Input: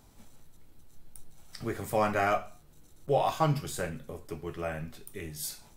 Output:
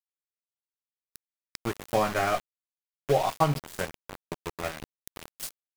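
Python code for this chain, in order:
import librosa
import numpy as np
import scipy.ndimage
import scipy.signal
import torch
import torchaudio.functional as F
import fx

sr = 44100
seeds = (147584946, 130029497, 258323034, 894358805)

y = np.where(np.abs(x) >= 10.0 ** (-31.0 / 20.0), x, 0.0)
y = fx.transient(y, sr, attack_db=5, sustain_db=0)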